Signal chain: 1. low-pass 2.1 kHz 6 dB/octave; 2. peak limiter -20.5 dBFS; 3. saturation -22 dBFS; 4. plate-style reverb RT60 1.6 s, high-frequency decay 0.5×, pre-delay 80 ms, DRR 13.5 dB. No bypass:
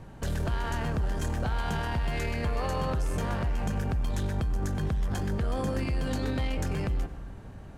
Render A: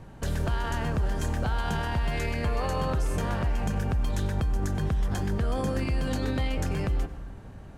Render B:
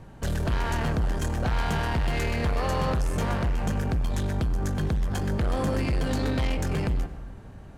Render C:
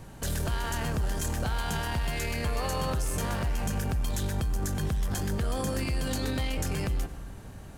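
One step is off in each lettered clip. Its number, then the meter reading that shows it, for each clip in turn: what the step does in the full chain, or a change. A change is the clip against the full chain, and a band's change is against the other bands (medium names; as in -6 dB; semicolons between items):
3, distortion -20 dB; 2, mean gain reduction 5.5 dB; 1, 8 kHz band +9.5 dB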